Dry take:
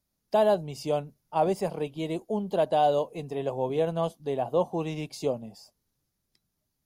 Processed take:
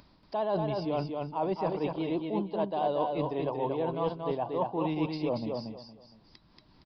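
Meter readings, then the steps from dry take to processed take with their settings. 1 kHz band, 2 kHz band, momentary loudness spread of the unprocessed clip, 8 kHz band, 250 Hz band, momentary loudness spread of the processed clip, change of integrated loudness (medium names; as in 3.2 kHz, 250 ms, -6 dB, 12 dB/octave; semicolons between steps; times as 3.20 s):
-3.5 dB, -3.5 dB, 9 LU, no reading, +1.0 dB, 5 LU, -3.5 dB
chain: peaking EQ 990 Hz +9.5 dB 0.38 oct; vibrato 15 Hz 29 cents; peaking EQ 310 Hz +7.5 dB 0.23 oct; reverse; compression 6:1, threshold -33 dBFS, peak gain reduction 16 dB; reverse; resampled via 11.025 kHz; on a send: feedback delay 232 ms, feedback 22%, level -4 dB; on the sum: upward compressor, threshold -49 dBFS; trim +4.5 dB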